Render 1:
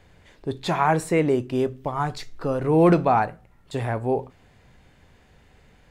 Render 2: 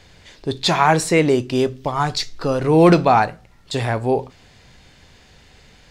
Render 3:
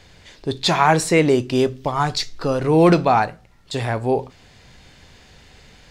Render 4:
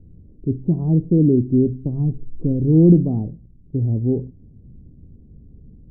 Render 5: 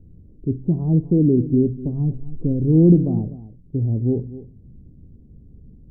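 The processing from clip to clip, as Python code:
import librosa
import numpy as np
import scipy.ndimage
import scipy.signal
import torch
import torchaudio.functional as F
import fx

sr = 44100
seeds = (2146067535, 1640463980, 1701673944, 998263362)

y1 = fx.peak_eq(x, sr, hz=4900.0, db=12.0, octaves=1.6)
y1 = F.gain(torch.from_numpy(y1), 4.5).numpy()
y2 = fx.rider(y1, sr, range_db=10, speed_s=2.0)
y2 = F.gain(torch.from_numpy(y2), -1.0).numpy()
y3 = scipy.signal.sosfilt(scipy.signal.cheby2(4, 80, 1800.0, 'lowpass', fs=sr, output='sos'), y2)
y3 = F.gain(torch.from_numpy(y3), 6.5).numpy()
y4 = y3 + 10.0 ** (-15.5 / 20.0) * np.pad(y3, (int(249 * sr / 1000.0), 0))[:len(y3)]
y4 = F.gain(torch.from_numpy(y4), -1.0).numpy()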